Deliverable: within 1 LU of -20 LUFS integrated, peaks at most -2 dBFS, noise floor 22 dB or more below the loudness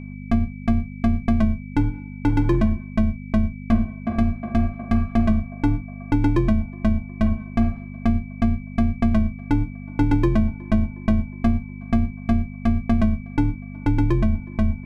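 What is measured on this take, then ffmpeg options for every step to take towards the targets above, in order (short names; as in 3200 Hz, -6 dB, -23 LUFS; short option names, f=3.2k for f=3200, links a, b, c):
hum 50 Hz; harmonics up to 250 Hz; hum level -33 dBFS; steady tone 2300 Hz; tone level -47 dBFS; loudness -23.0 LUFS; peak -8.5 dBFS; loudness target -20.0 LUFS
-> -af "bandreject=f=50:t=h:w=4,bandreject=f=100:t=h:w=4,bandreject=f=150:t=h:w=4,bandreject=f=200:t=h:w=4,bandreject=f=250:t=h:w=4"
-af "bandreject=f=2.3k:w=30"
-af "volume=3dB"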